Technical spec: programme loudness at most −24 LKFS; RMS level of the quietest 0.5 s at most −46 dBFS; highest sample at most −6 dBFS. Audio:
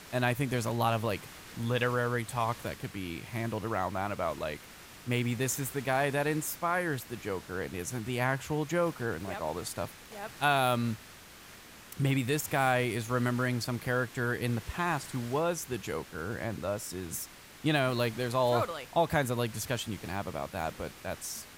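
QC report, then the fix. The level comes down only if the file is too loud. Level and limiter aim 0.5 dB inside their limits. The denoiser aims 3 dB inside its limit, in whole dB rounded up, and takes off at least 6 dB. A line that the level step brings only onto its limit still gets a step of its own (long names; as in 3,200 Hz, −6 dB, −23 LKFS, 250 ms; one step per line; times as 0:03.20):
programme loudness −32.0 LKFS: in spec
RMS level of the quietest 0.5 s −51 dBFS: in spec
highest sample −13.5 dBFS: in spec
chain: no processing needed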